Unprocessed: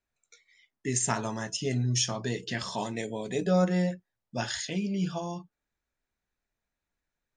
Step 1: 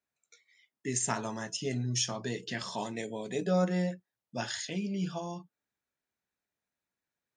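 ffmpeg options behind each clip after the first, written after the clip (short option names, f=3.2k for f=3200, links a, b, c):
-af "highpass=120,volume=-3dB"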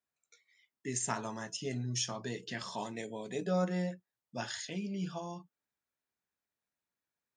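-af "equalizer=f=1.1k:t=o:w=0.77:g=2.5,volume=-4dB"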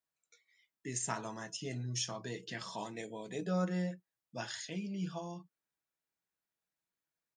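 -af "aecho=1:1:6.2:0.32,volume=-2.5dB"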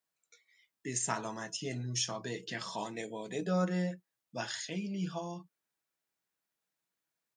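-af "lowshelf=f=70:g=-10.5,volume=3.5dB"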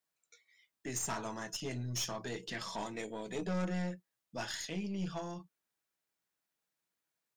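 -af "aeval=exprs='(tanh(39.8*val(0)+0.4)-tanh(0.4))/39.8':c=same,volume=1dB"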